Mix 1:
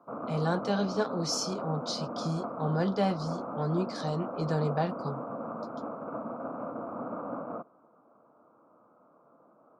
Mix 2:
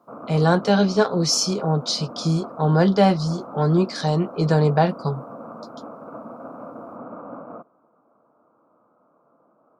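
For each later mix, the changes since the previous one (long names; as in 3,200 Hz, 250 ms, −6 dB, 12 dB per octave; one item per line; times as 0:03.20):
speech +11.5 dB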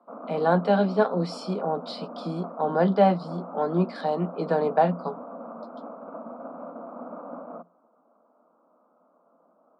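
speech: add moving average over 7 samples
master: add Chebyshev high-pass with heavy ripple 170 Hz, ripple 6 dB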